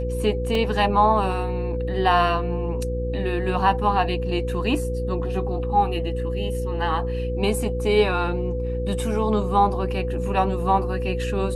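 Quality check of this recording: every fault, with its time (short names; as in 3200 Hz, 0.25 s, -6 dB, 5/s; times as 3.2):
hum 60 Hz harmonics 8 -27 dBFS
tone 500 Hz -28 dBFS
0.55 gap 2.4 ms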